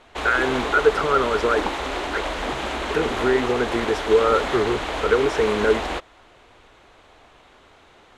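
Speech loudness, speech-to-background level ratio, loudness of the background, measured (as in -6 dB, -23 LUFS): -22.0 LUFS, 5.0 dB, -27.0 LUFS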